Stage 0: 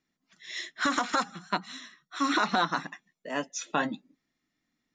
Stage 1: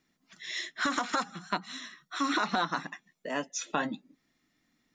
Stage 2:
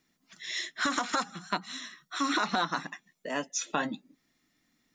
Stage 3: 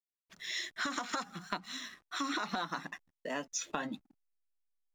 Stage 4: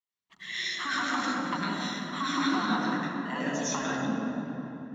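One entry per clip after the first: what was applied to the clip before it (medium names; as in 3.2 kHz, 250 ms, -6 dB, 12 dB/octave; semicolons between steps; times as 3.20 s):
compression 1.5:1, threshold -49 dBFS, peak gain reduction 10 dB; trim +6.5 dB
treble shelf 5.3 kHz +5.5 dB
hysteresis with a dead band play -50.5 dBFS; compression 3:1, threshold -32 dBFS, peak gain reduction 7 dB; trim -1.5 dB
reverberation RT60 3.5 s, pre-delay 75 ms, DRR -5.5 dB; trim -8 dB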